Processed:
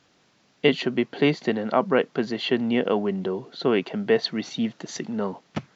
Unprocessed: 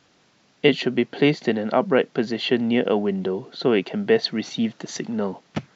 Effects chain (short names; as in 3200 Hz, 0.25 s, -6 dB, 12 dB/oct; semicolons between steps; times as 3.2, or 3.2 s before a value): dynamic EQ 1100 Hz, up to +5 dB, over -43 dBFS, Q 2.7; gain -2.5 dB